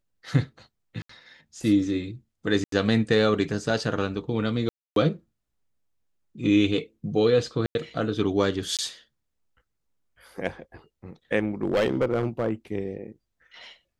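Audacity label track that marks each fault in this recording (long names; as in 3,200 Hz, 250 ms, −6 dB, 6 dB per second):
1.020000	1.090000	drop-out 74 ms
2.640000	2.720000	drop-out 83 ms
4.690000	4.960000	drop-out 272 ms
7.660000	7.750000	drop-out 91 ms
8.770000	8.790000	drop-out 17 ms
11.630000	12.510000	clipping −18 dBFS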